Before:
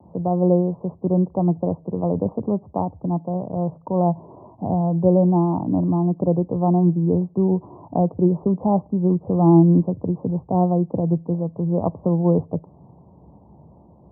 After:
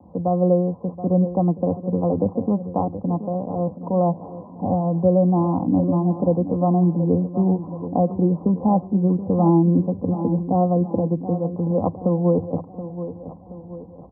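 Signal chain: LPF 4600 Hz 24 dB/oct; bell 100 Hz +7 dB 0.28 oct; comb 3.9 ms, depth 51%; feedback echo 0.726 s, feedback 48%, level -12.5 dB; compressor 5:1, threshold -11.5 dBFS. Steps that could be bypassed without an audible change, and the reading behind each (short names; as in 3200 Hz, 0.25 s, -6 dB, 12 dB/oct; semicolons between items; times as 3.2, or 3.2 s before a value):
LPF 4600 Hz: input band ends at 910 Hz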